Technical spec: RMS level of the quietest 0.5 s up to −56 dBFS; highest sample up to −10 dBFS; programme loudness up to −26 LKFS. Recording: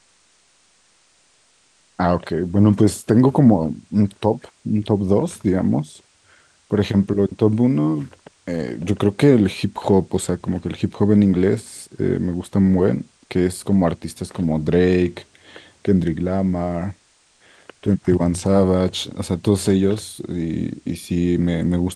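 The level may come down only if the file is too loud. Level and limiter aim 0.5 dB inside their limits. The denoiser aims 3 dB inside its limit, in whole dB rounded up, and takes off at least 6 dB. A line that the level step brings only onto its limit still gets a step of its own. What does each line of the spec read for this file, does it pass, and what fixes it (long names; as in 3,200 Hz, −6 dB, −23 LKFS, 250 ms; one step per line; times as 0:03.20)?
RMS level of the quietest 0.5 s −58 dBFS: in spec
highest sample −2.5 dBFS: out of spec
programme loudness −19.5 LKFS: out of spec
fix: level −7 dB
brickwall limiter −10.5 dBFS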